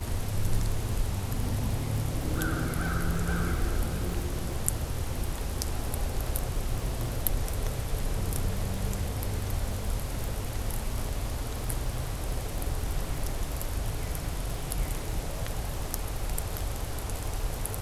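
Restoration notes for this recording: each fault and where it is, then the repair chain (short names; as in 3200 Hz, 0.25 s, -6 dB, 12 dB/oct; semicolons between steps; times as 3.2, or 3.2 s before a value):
crackle 54/s -36 dBFS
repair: de-click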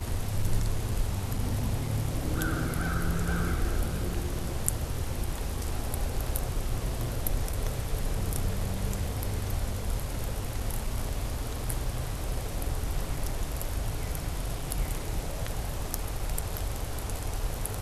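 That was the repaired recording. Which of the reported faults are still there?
none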